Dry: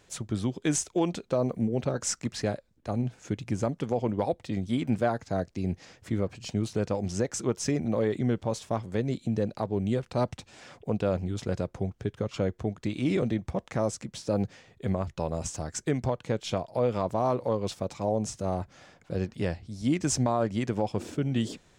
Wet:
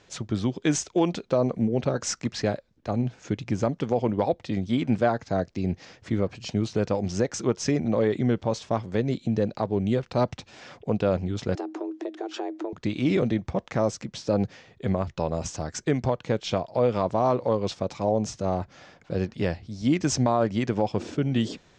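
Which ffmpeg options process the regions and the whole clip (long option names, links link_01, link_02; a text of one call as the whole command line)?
ffmpeg -i in.wav -filter_complex "[0:a]asettb=1/sr,asplit=3[link_01][link_02][link_03];[link_01]atrim=end=11.554[link_04];[link_02]atrim=start=11.55:end=12.73,asetpts=PTS-STARTPTS,afade=type=in:duration=0.004:curve=qsin,afade=type=out:start_time=1.176:duration=0.004:curve=qsin,equalizer=frequency=86:width=3.5:gain=11.5,acompressor=threshold=-31dB:ratio=12:attack=3.2:release=140:knee=1:detection=peak,afreqshift=230[link_05];[link_03]atrim=start=12.726[link_06];[link_04][link_05]acrossfade=duration=0.004:curve1=hsin:curve2=qsin[link_07];[link_07][link_06]acrossfade=duration=0.004:curve1=qsin:curve2=hsin,lowpass=frequency=6400:width=0.5412,lowpass=frequency=6400:width=1.3066,lowshelf=frequency=75:gain=-5.5,volume=4dB" out.wav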